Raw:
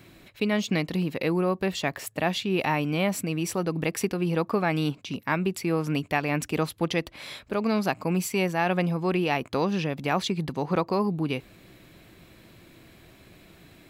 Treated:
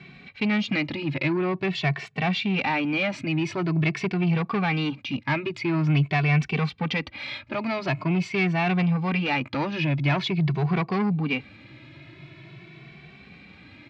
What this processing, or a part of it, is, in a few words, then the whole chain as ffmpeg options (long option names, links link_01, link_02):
barber-pole flanger into a guitar amplifier: -filter_complex "[0:a]asplit=2[link_01][link_02];[link_02]adelay=2.2,afreqshift=0.46[link_03];[link_01][link_03]amix=inputs=2:normalize=1,asoftclip=type=tanh:threshold=-26.5dB,highpass=83,equalizer=frequency=140:width_type=q:width=4:gain=10,equalizer=frequency=500:width_type=q:width=4:gain=-8,equalizer=frequency=2300:width_type=q:width=4:gain=8,lowpass=frequency=4500:width=0.5412,lowpass=frequency=4500:width=1.3066,volume=6.5dB"